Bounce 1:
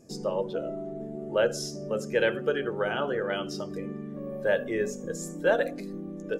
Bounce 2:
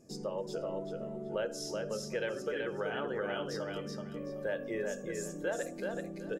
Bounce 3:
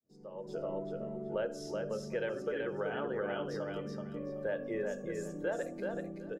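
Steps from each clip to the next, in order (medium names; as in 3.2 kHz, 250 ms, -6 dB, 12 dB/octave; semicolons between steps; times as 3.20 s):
compression 2.5:1, threshold -29 dBFS, peak gain reduction 8 dB; on a send: feedback delay 379 ms, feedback 22%, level -3.5 dB; on the sum: trim -5 dB
fade-in on the opening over 0.59 s; treble shelf 2.8 kHz -11 dB; level rider gain up to 4.5 dB; trim -4 dB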